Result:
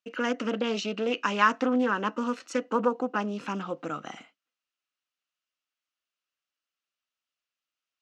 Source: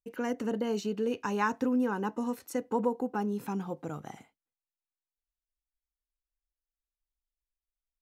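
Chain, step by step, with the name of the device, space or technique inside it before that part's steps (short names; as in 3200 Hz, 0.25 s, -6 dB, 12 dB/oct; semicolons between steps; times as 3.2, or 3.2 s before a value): low shelf 79 Hz -10 dB; full-range speaker at full volume (Doppler distortion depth 0.23 ms; speaker cabinet 260–6500 Hz, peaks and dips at 410 Hz -8 dB, 860 Hz -8 dB, 1300 Hz +7 dB, 2800 Hz +8 dB); gain +7.5 dB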